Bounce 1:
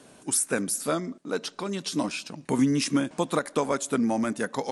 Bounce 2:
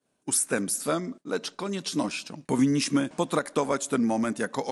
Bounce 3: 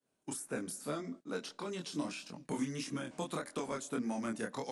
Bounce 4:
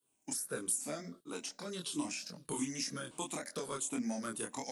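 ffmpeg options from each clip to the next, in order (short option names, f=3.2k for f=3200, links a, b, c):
-af "agate=range=-33dB:threshold=-38dB:ratio=3:detection=peak"
-filter_complex "[0:a]acrossover=split=300|1300[a][b][c];[a]acompressor=threshold=-31dB:ratio=4[d];[b]acompressor=threshold=-32dB:ratio=4[e];[c]acompressor=threshold=-35dB:ratio=4[f];[d][e][f]amix=inputs=3:normalize=0,flanger=delay=22.5:depth=5:speed=1.7,volume=-4.5dB"
-af "afftfilt=real='re*pow(10,10/40*sin(2*PI*(0.64*log(max(b,1)*sr/1024/100)/log(2)-(-1.6)*(pts-256)/sr)))':imag='im*pow(10,10/40*sin(2*PI*(0.64*log(max(b,1)*sr/1024/100)/log(2)-(-1.6)*(pts-256)/sr)))':win_size=1024:overlap=0.75,crystalizer=i=2.5:c=0,volume=-4dB"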